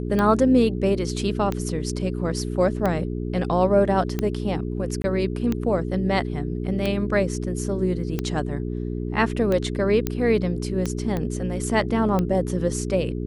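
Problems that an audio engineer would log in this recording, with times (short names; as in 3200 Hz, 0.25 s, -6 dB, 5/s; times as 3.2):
hum 60 Hz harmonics 7 -28 dBFS
tick 45 rpm -12 dBFS
5.02–5.04 gap 20 ms
10.07 pop -9 dBFS
11.17 pop -15 dBFS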